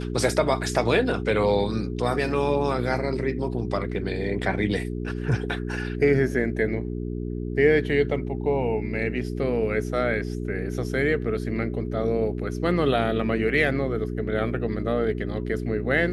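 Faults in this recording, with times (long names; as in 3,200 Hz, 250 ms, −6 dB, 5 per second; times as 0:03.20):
mains hum 60 Hz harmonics 7 −30 dBFS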